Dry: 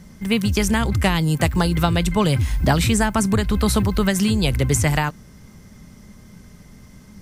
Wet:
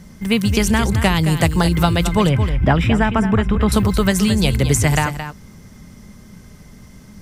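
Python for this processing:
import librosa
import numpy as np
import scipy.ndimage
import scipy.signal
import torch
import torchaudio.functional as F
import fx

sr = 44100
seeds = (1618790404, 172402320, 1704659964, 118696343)

y = fx.savgol(x, sr, points=25, at=(2.27, 3.72))
y = y + 10.0 ** (-10.0 / 20.0) * np.pad(y, (int(220 * sr / 1000.0), 0))[:len(y)]
y = y * librosa.db_to_amplitude(2.5)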